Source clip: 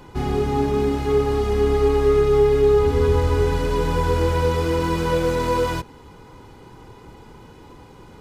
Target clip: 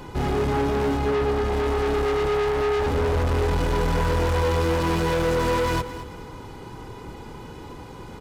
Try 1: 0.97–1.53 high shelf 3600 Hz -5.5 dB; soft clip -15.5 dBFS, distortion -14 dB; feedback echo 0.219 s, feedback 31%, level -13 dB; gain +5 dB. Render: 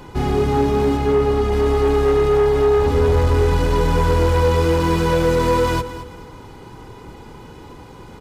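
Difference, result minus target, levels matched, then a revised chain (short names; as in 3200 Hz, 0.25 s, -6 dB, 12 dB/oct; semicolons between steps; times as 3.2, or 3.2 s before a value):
soft clip: distortion -8 dB
0.97–1.53 high shelf 3600 Hz -5.5 dB; soft clip -25.5 dBFS, distortion -7 dB; feedback echo 0.219 s, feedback 31%, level -13 dB; gain +5 dB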